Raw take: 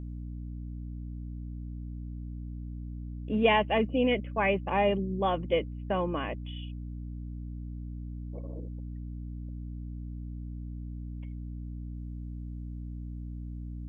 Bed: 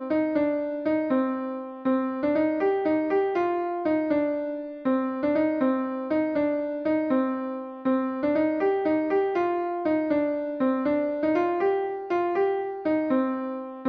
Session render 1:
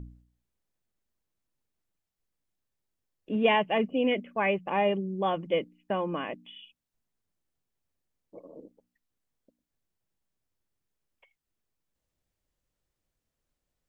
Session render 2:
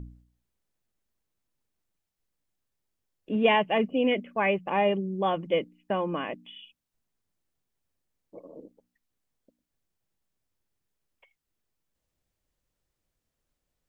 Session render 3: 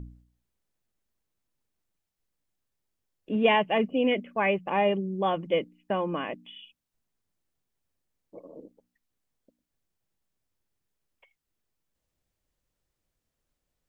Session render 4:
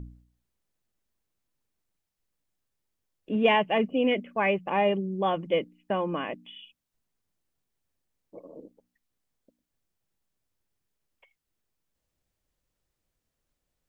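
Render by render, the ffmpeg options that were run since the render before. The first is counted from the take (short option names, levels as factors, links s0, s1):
-af "bandreject=f=60:t=h:w=4,bandreject=f=120:t=h:w=4,bandreject=f=180:t=h:w=4,bandreject=f=240:t=h:w=4,bandreject=f=300:t=h:w=4"
-af "volume=1.19"
-af anull
-af "aeval=exprs='0.299*(cos(1*acos(clip(val(0)/0.299,-1,1)))-cos(1*PI/2))+0.00168*(cos(5*acos(clip(val(0)/0.299,-1,1)))-cos(5*PI/2))':c=same"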